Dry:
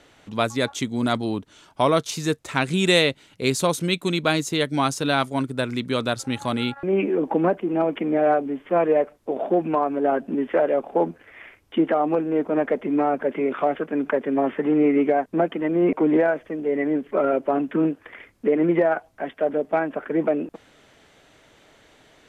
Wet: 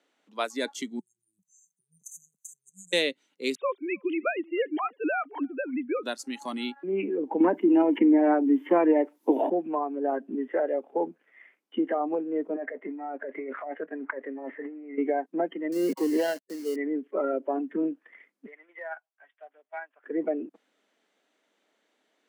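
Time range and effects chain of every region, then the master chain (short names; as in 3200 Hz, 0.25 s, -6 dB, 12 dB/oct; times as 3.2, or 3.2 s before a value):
0.99–2.93 brick-wall FIR band-stop 170–6000 Hz + negative-ratio compressor -39 dBFS, ratio -0.5
3.55–6.03 sine-wave speech + echo 0.311 s -22.5 dB
7.4–9.5 high shelf 2100 Hz +8 dB + small resonant body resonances 300/910 Hz, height 12 dB + three-band squash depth 100%
12.56–14.98 G.711 law mismatch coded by A + negative-ratio compressor -26 dBFS + speaker cabinet 170–2700 Hz, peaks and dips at 230 Hz -8 dB, 360 Hz -6 dB, 630 Hz +5 dB, 1900 Hz +3 dB
15.72–16.76 switching dead time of 0.19 ms + high shelf 5800 Hz -9 dB + requantised 6-bit, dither none
18.46–20.04 HPF 1100 Hz + upward expander, over -46 dBFS
whole clip: spectral noise reduction 12 dB; steep high-pass 200 Hz 48 dB/oct; gain -6.5 dB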